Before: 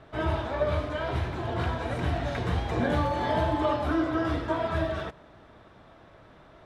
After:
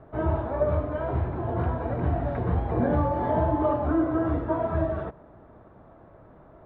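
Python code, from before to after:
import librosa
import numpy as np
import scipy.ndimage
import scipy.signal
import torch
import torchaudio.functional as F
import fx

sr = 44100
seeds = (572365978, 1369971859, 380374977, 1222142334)

y = scipy.signal.sosfilt(scipy.signal.butter(2, 1000.0, 'lowpass', fs=sr, output='sos'), x)
y = y * librosa.db_to_amplitude(3.0)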